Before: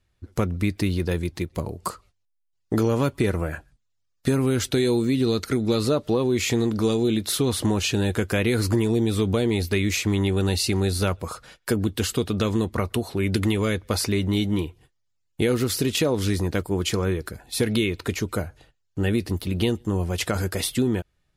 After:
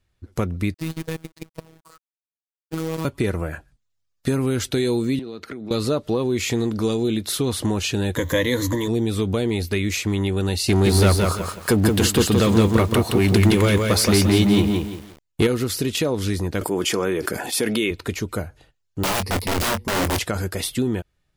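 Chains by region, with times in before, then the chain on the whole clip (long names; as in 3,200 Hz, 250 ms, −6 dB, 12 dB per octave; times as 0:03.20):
0:00.74–0:03.05: output level in coarse steps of 24 dB + log-companded quantiser 4 bits + phases set to zero 161 Hz
0:05.19–0:05.71: three-way crossover with the lows and the highs turned down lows −14 dB, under 160 Hz, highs −14 dB, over 3,600 Hz + downward compressor 10 to 1, threshold −29 dBFS
0:08.16–0:08.88: converter with a step at zero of −36 dBFS + EQ curve with evenly spaced ripples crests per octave 1.1, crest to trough 15 dB
0:10.68–0:15.47: leveller curve on the samples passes 2 + feedback echo at a low word length 171 ms, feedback 35%, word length 7 bits, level −3 dB
0:16.61–0:17.91: high-pass filter 250 Hz + notch filter 4,000 Hz, Q 7.2 + envelope flattener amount 70%
0:19.03–0:20.19: EQ curve with evenly spaced ripples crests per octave 0.88, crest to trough 13 dB + wrap-around overflow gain 17.5 dB + double-tracking delay 22 ms −10.5 dB
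whole clip: no processing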